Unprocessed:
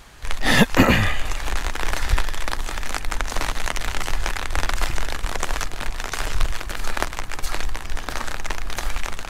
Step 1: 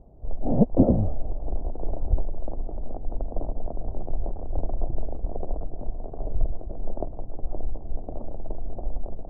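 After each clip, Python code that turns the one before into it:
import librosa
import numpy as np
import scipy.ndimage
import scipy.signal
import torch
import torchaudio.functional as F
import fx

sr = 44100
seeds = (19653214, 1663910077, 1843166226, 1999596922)

y = scipy.signal.sosfilt(scipy.signal.ellip(4, 1.0, 70, 680.0, 'lowpass', fs=sr, output='sos'), x)
y = y * librosa.db_to_amplitude(-1.5)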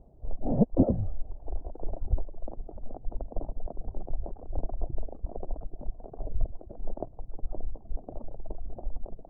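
y = fx.dereverb_blind(x, sr, rt60_s=1.6)
y = y * librosa.db_to_amplitude(-3.5)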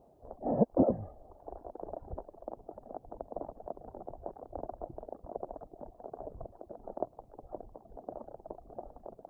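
y = fx.highpass(x, sr, hz=860.0, slope=6)
y = y * librosa.db_to_amplitude(7.0)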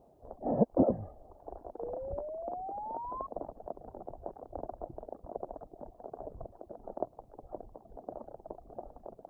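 y = fx.spec_paint(x, sr, seeds[0], shape='rise', start_s=1.79, length_s=1.48, low_hz=460.0, high_hz=1100.0, level_db=-40.0)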